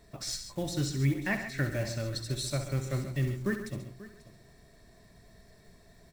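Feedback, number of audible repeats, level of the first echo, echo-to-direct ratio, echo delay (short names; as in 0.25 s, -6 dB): no steady repeat, 5, -9.5 dB, -6.5 dB, 66 ms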